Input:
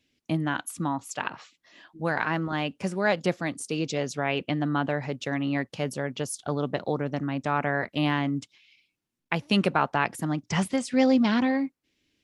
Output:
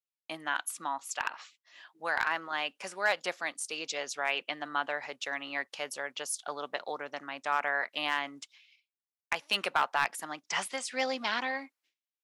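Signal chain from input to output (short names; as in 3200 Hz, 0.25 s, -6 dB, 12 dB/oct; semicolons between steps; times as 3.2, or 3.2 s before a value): expander -54 dBFS; HPF 860 Hz 12 dB/oct; hard clip -17.5 dBFS, distortion -19 dB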